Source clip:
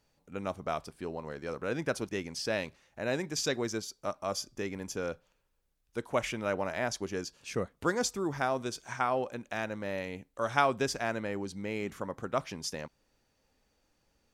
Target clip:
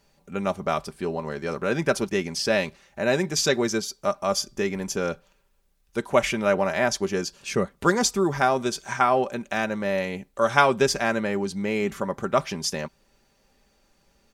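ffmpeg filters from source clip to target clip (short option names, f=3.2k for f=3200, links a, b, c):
-af "aecho=1:1:5.1:0.47,volume=8.5dB"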